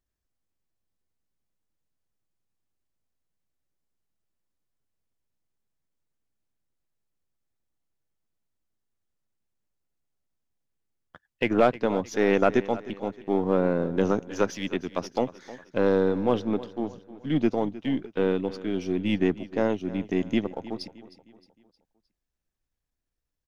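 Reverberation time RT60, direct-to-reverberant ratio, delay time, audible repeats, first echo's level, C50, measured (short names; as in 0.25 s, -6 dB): none, none, 0.31 s, 3, -17.0 dB, none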